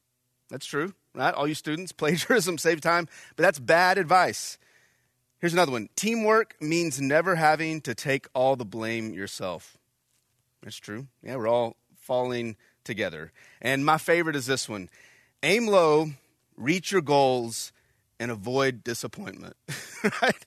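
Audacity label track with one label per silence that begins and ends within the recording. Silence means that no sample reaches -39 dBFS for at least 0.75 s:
4.540000	5.430000	silence
9.640000	10.630000	silence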